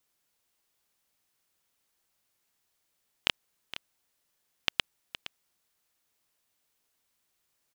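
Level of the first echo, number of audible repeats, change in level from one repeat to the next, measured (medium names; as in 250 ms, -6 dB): -14.0 dB, 1, no regular repeats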